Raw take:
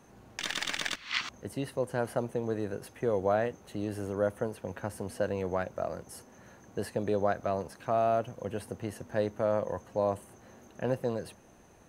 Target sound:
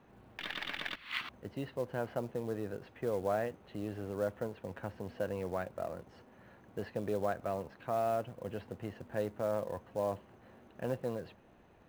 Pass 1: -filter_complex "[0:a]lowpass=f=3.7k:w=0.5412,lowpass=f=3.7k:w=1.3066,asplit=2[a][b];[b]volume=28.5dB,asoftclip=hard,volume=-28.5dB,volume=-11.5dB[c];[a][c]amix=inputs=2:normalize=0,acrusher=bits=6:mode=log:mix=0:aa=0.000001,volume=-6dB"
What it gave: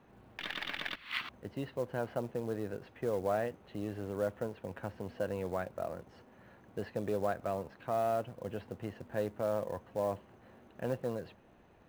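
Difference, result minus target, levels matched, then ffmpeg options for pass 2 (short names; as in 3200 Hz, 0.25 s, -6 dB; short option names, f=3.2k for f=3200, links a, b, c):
overloaded stage: distortion -5 dB
-filter_complex "[0:a]lowpass=f=3.7k:w=0.5412,lowpass=f=3.7k:w=1.3066,asplit=2[a][b];[b]volume=36.5dB,asoftclip=hard,volume=-36.5dB,volume=-11.5dB[c];[a][c]amix=inputs=2:normalize=0,acrusher=bits=6:mode=log:mix=0:aa=0.000001,volume=-6dB"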